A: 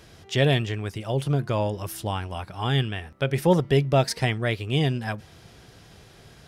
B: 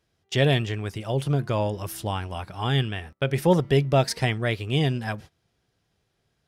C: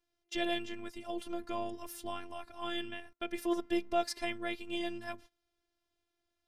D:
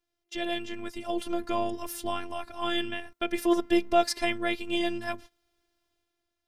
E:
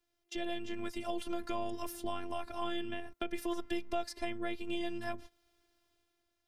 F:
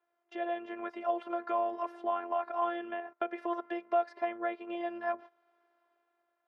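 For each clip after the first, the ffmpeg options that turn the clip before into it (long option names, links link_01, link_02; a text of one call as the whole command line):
ffmpeg -i in.wav -af "agate=range=-23dB:threshold=-41dB:ratio=16:detection=peak" out.wav
ffmpeg -i in.wav -af "afftfilt=real='hypot(re,im)*cos(PI*b)':imag='0':win_size=512:overlap=0.75,volume=-7dB" out.wav
ffmpeg -i in.wav -af "dynaudnorm=framelen=210:gausssize=7:maxgain=8.5dB" out.wav
ffmpeg -i in.wav -filter_complex "[0:a]acrossover=split=84|890[link_01][link_02][link_03];[link_01]acompressor=threshold=-41dB:ratio=4[link_04];[link_02]acompressor=threshold=-40dB:ratio=4[link_05];[link_03]acompressor=threshold=-46dB:ratio=4[link_06];[link_04][link_05][link_06]amix=inputs=3:normalize=0,volume=1.5dB" out.wav
ffmpeg -i in.wav -af "asuperpass=centerf=870:order=4:qfactor=0.8,volume=8.5dB" out.wav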